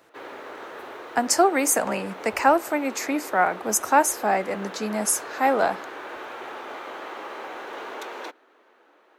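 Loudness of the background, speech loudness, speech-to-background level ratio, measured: −37.5 LKFS, −23.0 LKFS, 14.5 dB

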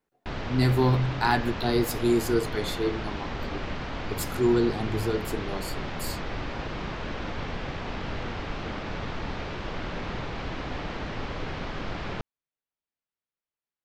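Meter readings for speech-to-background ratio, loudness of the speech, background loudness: 8.0 dB, −26.5 LKFS, −34.5 LKFS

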